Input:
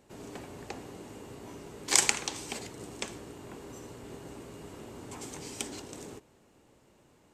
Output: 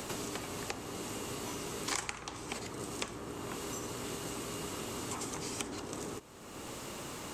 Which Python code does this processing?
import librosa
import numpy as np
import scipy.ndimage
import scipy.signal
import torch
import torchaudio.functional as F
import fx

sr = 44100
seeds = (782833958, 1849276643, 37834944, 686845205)

y = fx.peak_eq(x, sr, hz=1200.0, db=7.5, octaves=0.45)
y = fx.band_squash(y, sr, depth_pct=100)
y = F.gain(torch.from_numpy(y), 1.5).numpy()